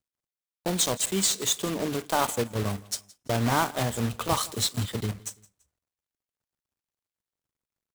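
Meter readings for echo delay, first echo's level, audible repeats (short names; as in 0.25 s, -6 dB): 0.168 s, -22.5 dB, 2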